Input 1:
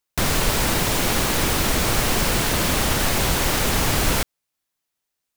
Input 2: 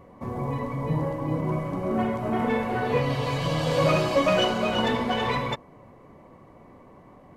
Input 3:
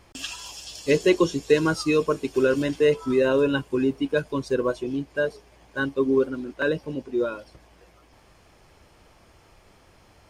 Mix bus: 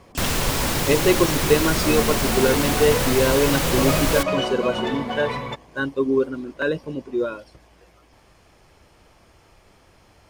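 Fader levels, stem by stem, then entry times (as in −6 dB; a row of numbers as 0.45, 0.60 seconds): −2.5, −2.0, +1.0 decibels; 0.00, 0.00, 0.00 seconds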